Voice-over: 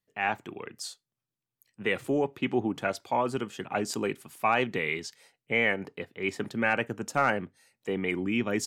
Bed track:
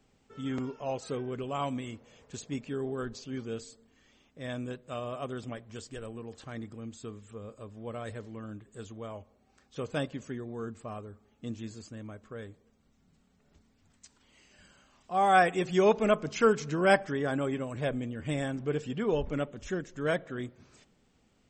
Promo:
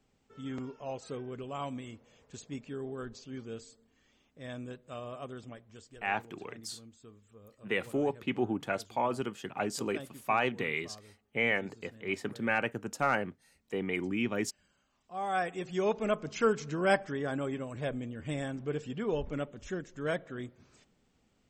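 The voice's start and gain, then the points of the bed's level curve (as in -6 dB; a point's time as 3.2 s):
5.85 s, -3.5 dB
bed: 5.19 s -5 dB
6.14 s -12 dB
14.91 s -12 dB
16.37 s -3.5 dB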